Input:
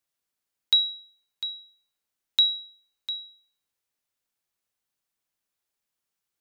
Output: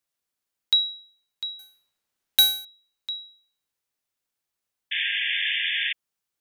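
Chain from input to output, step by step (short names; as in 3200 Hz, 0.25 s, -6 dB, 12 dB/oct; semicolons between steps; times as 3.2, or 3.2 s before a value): 1.59–2.65 half-waves squared off; 4.91–5.93 painted sound noise 1600–3600 Hz -26 dBFS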